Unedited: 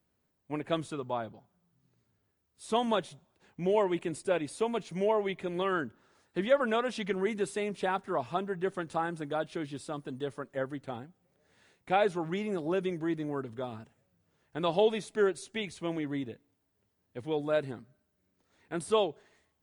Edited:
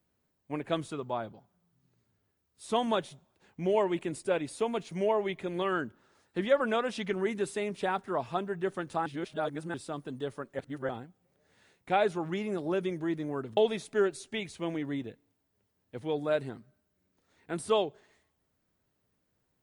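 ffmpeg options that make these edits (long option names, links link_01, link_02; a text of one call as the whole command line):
ffmpeg -i in.wav -filter_complex "[0:a]asplit=6[link_01][link_02][link_03][link_04][link_05][link_06];[link_01]atrim=end=9.062[link_07];[link_02]atrim=start=9.058:end=9.742,asetpts=PTS-STARTPTS,areverse[link_08];[link_03]atrim=start=9.738:end=10.592[link_09];[link_04]atrim=start=10.588:end=10.892,asetpts=PTS-STARTPTS,areverse[link_10];[link_05]atrim=start=10.888:end=13.572[link_11];[link_06]atrim=start=14.788[link_12];[link_07][link_08]acrossfade=duration=0.004:curve1=hsin:curve2=hsin[link_13];[link_13][link_09]acrossfade=duration=0.004:curve1=hsin:curve2=hsin[link_14];[link_14][link_10]acrossfade=duration=0.004:curve1=hsin:curve2=hsin[link_15];[link_15][link_11]acrossfade=duration=0.004:curve1=hsin:curve2=hsin[link_16];[link_16][link_12]acrossfade=duration=0.004:curve1=hsin:curve2=hsin" out.wav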